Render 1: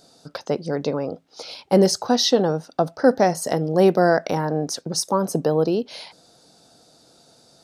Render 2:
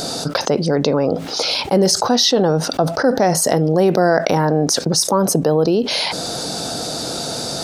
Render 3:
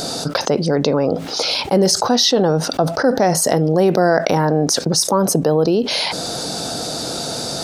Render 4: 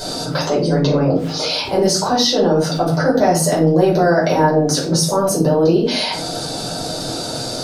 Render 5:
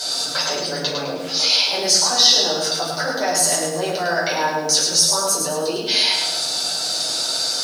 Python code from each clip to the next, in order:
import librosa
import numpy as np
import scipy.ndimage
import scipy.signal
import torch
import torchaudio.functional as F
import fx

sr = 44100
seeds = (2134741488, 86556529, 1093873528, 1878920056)

y1 = fx.env_flatten(x, sr, amount_pct=70)
y1 = F.gain(torch.from_numpy(y1), -1.0).numpy()
y2 = y1
y3 = fx.room_shoebox(y2, sr, seeds[0], volume_m3=270.0, walls='furnished', distance_m=5.0)
y3 = F.gain(torch.from_numpy(y3), -9.0).numpy()
y4 = fx.bandpass_q(y3, sr, hz=5300.0, q=0.5)
y4 = fx.echo_feedback(y4, sr, ms=104, feedback_pct=36, wet_db=-5.0)
y4 = fx.echo_crushed(y4, sr, ms=115, feedback_pct=55, bits=7, wet_db=-13.0)
y4 = F.gain(torch.from_numpy(y4), 4.5).numpy()